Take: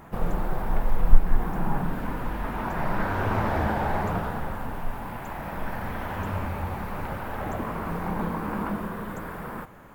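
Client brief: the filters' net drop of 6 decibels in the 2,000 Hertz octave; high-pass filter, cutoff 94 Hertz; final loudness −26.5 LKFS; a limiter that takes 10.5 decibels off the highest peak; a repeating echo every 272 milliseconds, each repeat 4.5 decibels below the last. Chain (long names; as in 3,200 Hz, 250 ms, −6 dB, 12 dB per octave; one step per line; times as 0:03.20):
high-pass filter 94 Hz
parametric band 2,000 Hz −8.5 dB
brickwall limiter −26 dBFS
repeating echo 272 ms, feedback 60%, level −4.5 dB
level +7 dB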